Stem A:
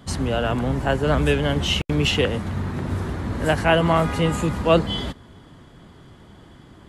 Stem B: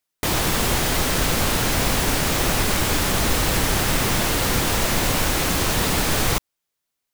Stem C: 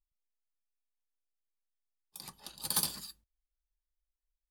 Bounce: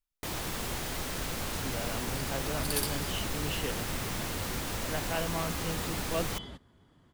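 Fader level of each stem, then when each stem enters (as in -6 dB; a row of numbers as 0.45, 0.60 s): -16.5, -14.5, -2.0 dB; 1.45, 0.00, 0.00 s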